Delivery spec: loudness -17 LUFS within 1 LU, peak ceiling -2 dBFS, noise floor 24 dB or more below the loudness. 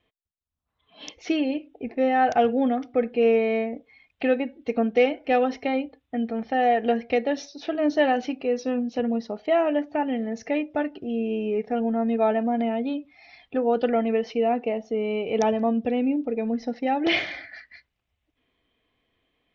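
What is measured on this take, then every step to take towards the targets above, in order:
loudness -25.0 LUFS; peak -9.0 dBFS; loudness target -17.0 LUFS
-> gain +8 dB; limiter -2 dBFS

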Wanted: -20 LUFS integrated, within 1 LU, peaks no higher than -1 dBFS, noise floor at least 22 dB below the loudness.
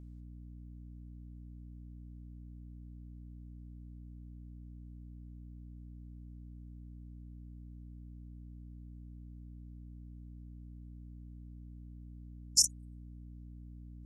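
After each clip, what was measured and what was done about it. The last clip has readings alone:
hum 60 Hz; harmonics up to 300 Hz; hum level -46 dBFS; loudness -42.0 LUFS; peak -11.0 dBFS; loudness target -20.0 LUFS
-> de-hum 60 Hz, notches 5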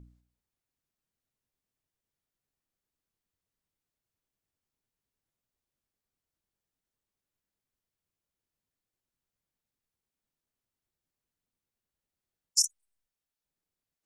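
hum none; loudness -28.0 LUFS; peak -11.0 dBFS; loudness target -20.0 LUFS
-> gain +8 dB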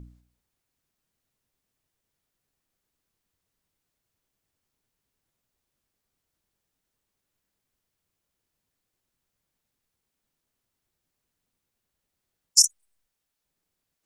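loudness -20.0 LUFS; peak -3.0 dBFS; noise floor -83 dBFS

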